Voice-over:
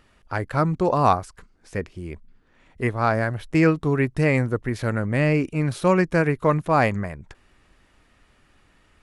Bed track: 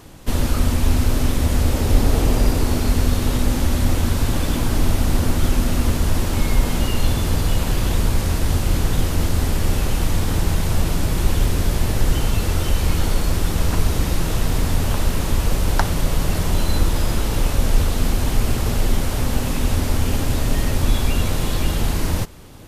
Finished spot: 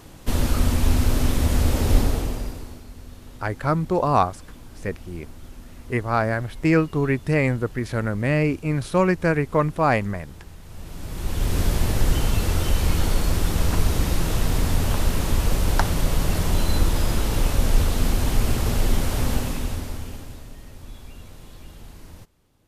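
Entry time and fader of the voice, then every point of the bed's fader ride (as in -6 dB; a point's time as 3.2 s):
3.10 s, -0.5 dB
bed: 1.97 s -2 dB
2.87 s -23.5 dB
10.62 s -23.5 dB
11.58 s -2 dB
19.32 s -2 dB
20.56 s -22.5 dB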